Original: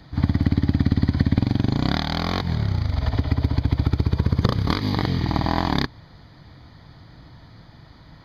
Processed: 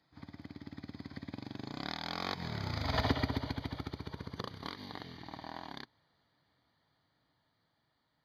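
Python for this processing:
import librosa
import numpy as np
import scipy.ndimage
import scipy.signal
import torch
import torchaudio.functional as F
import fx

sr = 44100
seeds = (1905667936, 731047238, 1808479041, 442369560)

y = fx.doppler_pass(x, sr, speed_mps=10, closest_m=2.1, pass_at_s=3.01)
y = fx.highpass(y, sr, hz=460.0, slope=6)
y = y * 10.0 ** (2.0 / 20.0)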